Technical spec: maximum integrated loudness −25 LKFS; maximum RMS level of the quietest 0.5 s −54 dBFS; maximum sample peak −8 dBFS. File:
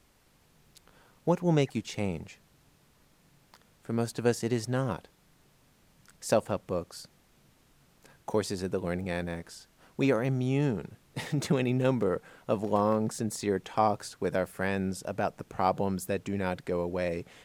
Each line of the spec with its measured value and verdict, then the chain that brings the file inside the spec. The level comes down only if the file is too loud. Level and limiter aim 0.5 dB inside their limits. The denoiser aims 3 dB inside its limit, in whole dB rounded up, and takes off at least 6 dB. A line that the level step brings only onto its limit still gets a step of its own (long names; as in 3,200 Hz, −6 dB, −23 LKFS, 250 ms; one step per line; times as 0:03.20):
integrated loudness −30.5 LKFS: in spec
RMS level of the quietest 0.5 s −65 dBFS: in spec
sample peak −11.0 dBFS: in spec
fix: no processing needed